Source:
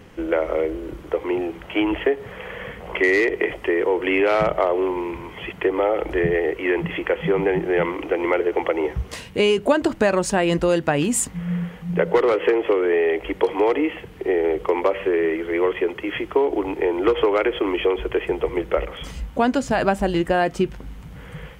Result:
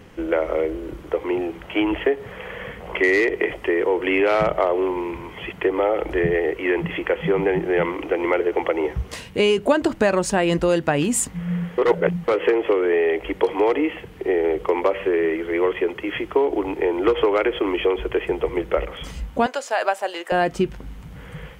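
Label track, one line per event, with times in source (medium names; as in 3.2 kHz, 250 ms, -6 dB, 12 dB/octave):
11.780000	12.280000	reverse
19.460000	20.320000	high-pass 510 Hz 24 dB/octave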